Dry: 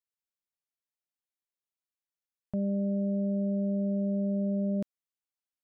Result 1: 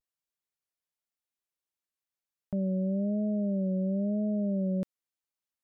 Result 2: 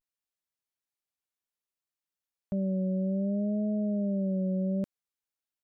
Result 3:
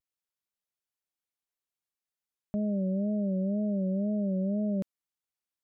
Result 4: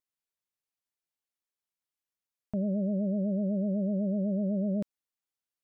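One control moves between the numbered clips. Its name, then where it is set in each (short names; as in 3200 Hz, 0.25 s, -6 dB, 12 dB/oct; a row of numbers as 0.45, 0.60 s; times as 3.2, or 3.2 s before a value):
vibrato, rate: 1, 0.61, 2, 8 Hz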